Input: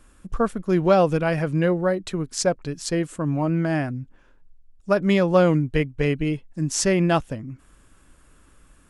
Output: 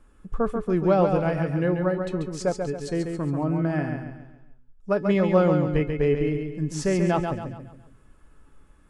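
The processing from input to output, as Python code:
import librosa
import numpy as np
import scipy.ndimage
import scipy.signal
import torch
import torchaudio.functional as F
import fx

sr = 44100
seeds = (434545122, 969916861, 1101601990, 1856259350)

y = fx.high_shelf(x, sr, hz=2300.0, db=-11.5)
y = fx.comb_fb(y, sr, f0_hz=430.0, decay_s=0.19, harmonics='all', damping=0.0, mix_pct=70)
y = fx.echo_feedback(y, sr, ms=138, feedback_pct=41, wet_db=-5.5)
y = y * librosa.db_to_amplitude(6.5)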